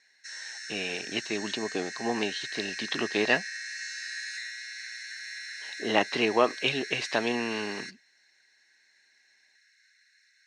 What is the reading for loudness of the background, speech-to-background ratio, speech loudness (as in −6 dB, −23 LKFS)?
−37.5 LKFS, 8.0 dB, −29.5 LKFS